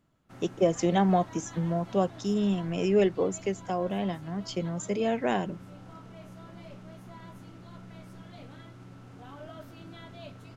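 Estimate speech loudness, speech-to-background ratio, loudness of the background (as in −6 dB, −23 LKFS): −28.5 LKFS, 18.5 dB, −47.0 LKFS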